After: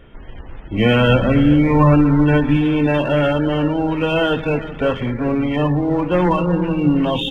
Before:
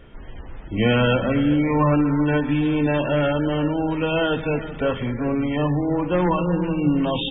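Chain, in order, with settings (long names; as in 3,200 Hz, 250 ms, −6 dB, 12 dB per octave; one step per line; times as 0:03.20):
0:01.09–0:02.57: low-shelf EQ 130 Hz +8.5 dB
in parallel at −8 dB: dead-zone distortion −33.5 dBFS
on the sum: level +1.5 dB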